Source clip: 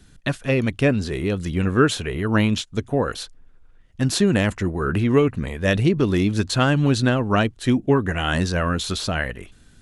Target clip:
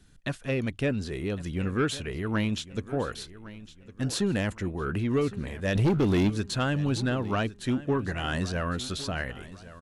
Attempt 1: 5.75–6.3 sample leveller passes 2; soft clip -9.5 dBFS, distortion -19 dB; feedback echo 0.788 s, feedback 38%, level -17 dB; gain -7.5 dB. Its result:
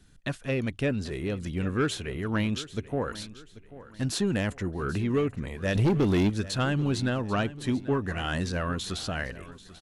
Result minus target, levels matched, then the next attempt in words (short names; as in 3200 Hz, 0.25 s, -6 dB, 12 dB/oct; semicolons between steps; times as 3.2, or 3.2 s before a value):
echo 0.32 s early
5.75–6.3 sample leveller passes 2; soft clip -9.5 dBFS, distortion -19 dB; feedback echo 1.108 s, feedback 38%, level -17 dB; gain -7.5 dB